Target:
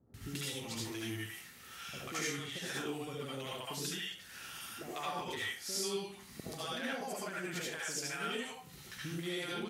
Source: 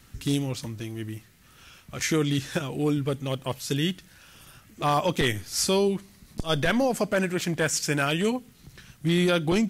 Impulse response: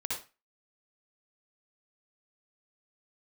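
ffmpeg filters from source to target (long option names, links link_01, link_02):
-filter_complex "[0:a]highpass=82,lowshelf=frequency=390:gain=-11.5,acompressor=threshold=-40dB:ratio=12,acrossover=split=620[link_01][link_02];[link_02]adelay=140[link_03];[link_01][link_03]amix=inputs=2:normalize=0[link_04];[1:a]atrim=start_sample=2205,asetrate=36603,aresample=44100[link_05];[link_04][link_05]afir=irnorm=-1:irlink=0,volume=1dB"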